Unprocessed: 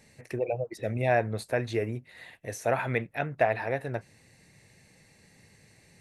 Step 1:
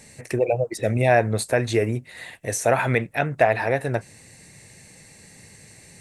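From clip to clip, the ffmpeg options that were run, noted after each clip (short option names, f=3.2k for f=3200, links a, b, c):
-filter_complex "[0:a]equalizer=f=8.2k:t=o:w=0.77:g=9,asplit=2[a][b];[b]alimiter=limit=-19dB:level=0:latency=1:release=118,volume=-1.5dB[c];[a][c]amix=inputs=2:normalize=0,volume=3.5dB"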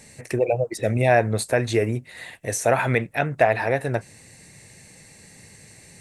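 -af anull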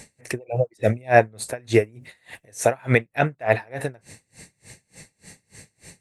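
-af "aeval=exprs='val(0)*pow(10,-32*(0.5-0.5*cos(2*PI*3.4*n/s))/20)':c=same,volume=5.5dB"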